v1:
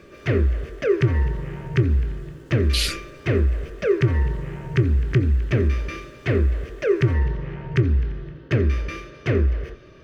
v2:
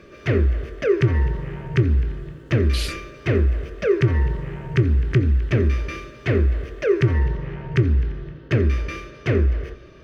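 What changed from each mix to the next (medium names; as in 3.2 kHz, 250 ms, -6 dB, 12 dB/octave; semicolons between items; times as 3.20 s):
speech -6.5 dB; reverb: on, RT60 1.4 s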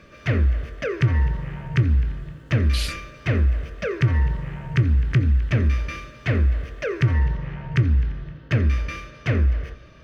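master: add peaking EQ 380 Hz -12.5 dB 0.5 oct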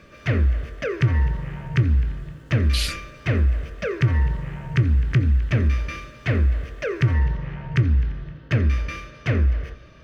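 speech +3.5 dB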